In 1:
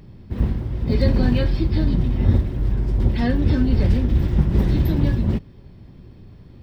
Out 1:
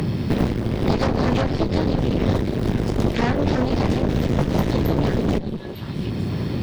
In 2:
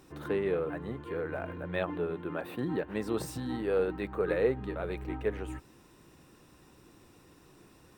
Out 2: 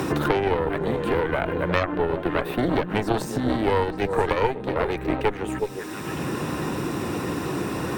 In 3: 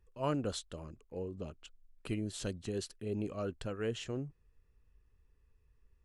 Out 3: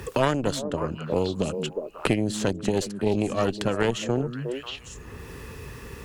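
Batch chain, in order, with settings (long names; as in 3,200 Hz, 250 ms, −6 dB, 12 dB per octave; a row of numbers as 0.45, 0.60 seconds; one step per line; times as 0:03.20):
high-pass filter 110 Hz 12 dB per octave
echo through a band-pass that steps 180 ms, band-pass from 180 Hz, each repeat 1.4 octaves, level −6.5 dB
harmonic generator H 6 −8 dB, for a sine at −8.5 dBFS
dynamic equaliser 6,600 Hz, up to +5 dB, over −58 dBFS, Q 3.6
multiband upward and downward compressor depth 100%
normalise the peak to −6 dBFS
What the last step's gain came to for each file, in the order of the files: −1.5, +7.5, +11.0 decibels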